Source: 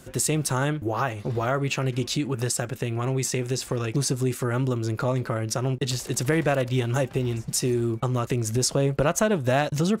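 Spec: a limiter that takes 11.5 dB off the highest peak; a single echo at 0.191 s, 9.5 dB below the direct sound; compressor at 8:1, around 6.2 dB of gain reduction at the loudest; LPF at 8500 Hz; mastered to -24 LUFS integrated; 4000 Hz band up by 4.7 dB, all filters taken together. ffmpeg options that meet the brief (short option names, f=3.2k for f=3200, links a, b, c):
-af "lowpass=8.5k,equalizer=f=4k:t=o:g=6.5,acompressor=threshold=-24dB:ratio=8,alimiter=limit=-24dB:level=0:latency=1,aecho=1:1:191:0.335,volume=8.5dB"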